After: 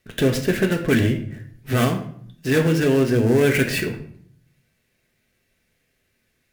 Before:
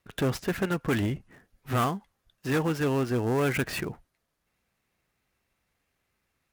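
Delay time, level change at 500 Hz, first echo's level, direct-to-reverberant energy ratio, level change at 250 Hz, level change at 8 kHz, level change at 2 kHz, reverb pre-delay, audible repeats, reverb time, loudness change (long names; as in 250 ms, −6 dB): no echo audible, +9.5 dB, no echo audible, 2.5 dB, +9.0 dB, +8.5 dB, +8.5 dB, 3 ms, no echo audible, 0.60 s, +8.5 dB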